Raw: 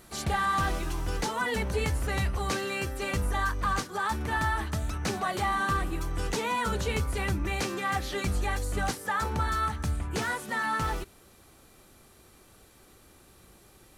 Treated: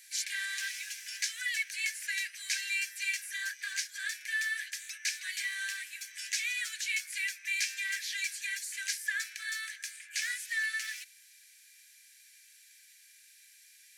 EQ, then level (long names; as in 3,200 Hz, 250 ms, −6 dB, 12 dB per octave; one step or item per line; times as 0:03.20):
Chebyshev high-pass with heavy ripple 1,600 Hz, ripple 6 dB
+5.5 dB